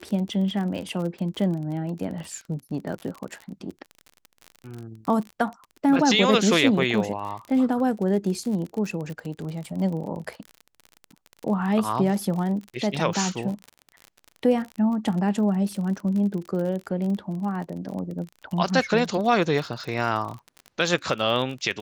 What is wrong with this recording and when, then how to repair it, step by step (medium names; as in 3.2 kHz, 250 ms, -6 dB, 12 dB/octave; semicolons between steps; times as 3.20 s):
crackle 41 per s -31 dBFS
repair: de-click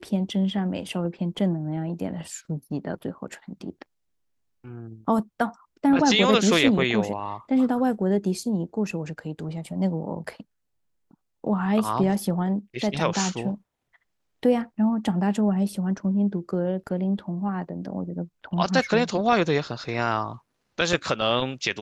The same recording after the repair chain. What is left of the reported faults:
nothing left